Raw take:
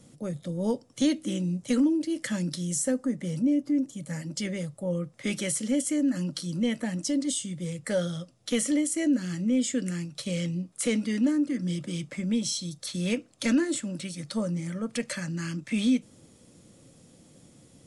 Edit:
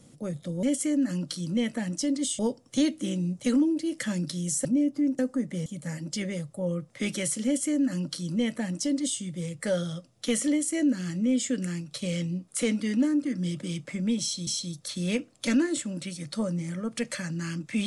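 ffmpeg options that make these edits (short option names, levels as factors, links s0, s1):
-filter_complex "[0:a]asplit=7[s0][s1][s2][s3][s4][s5][s6];[s0]atrim=end=0.632[s7];[s1]atrim=start=5.688:end=7.452[s8];[s2]atrim=start=0.628:end=2.892[s9];[s3]atrim=start=3.358:end=3.902[s10];[s4]atrim=start=2.888:end=3.362[s11];[s5]atrim=start=3.898:end=12.712[s12];[s6]atrim=start=12.448[s13];[s7][s8]acrossfade=d=0.004:c1=hsin:c2=hsin[s14];[s14][s9]acrossfade=d=0.004:c1=hsin:c2=hsin[s15];[s15][s10]acrossfade=d=0.004:c1=hsin:c2=hsin[s16];[s16][s11]acrossfade=d=0.004:c1=hsin:c2=hsin[s17];[s17][s12]acrossfade=d=0.004:c1=hsin:c2=hsin[s18];[s18][s13]acrossfade=d=0.004:c1=hsin:c2=hsin"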